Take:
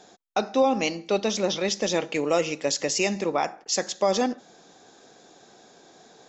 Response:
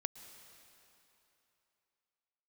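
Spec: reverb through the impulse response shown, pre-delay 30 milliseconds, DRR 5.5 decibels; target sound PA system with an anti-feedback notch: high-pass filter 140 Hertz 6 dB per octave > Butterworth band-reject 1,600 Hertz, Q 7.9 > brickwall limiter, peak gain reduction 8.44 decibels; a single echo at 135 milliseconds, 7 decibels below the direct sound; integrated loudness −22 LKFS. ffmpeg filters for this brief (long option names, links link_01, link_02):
-filter_complex "[0:a]aecho=1:1:135:0.447,asplit=2[link_01][link_02];[1:a]atrim=start_sample=2205,adelay=30[link_03];[link_02][link_03]afir=irnorm=-1:irlink=0,volume=-4dB[link_04];[link_01][link_04]amix=inputs=2:normalize=0,highpass=frequency=140:poles=1,asuperstop=centerf=1600:order=8:qfactor=7.9,volume=4.5dB,alimiter=limit=-12dB:level=0:latency=1"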